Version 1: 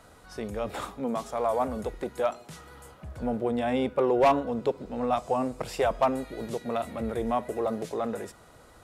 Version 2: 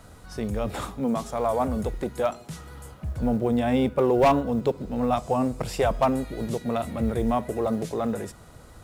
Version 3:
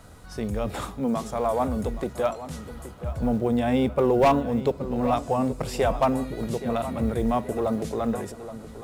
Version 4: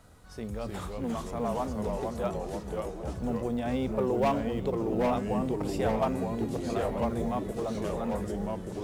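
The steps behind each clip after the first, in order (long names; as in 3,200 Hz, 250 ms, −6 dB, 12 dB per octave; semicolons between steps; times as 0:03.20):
bass and treble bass +9 dB, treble +3 dB; log-companded quantiser 8 bits; level +1.5 dB
feedback echo with a low-pass in the loop 823 ms, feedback 40%, low-pass 3,400 Hz, level −13 dB
delay with pitch and tempo change per echo 261 ms, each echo −2 semitones, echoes 3; level −8 dB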